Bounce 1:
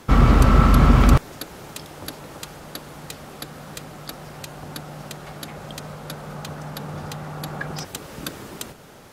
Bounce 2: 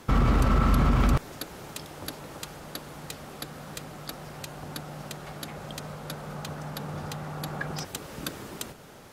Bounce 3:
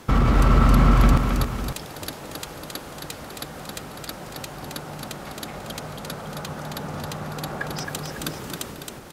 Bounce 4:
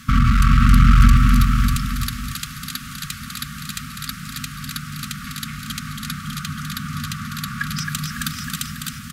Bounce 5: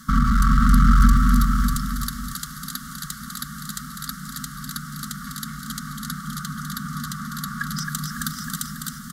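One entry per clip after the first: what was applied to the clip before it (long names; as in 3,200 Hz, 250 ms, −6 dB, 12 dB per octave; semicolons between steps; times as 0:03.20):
brickwall limiter −10.5 dBFS, peak gain reduction 8 dB; level −3 dB
multi-tap delay 269/492/551 ms −4.5/−18/−11 dB; level +3.5 dB
asymmetric clip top −20 dBFS; brick-wall band-stop 260–1,100 Hz; single-tap delay 600 ms −6 dB; level +5.5 dB
phaser with its sweep stopped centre 500 Hz, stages 8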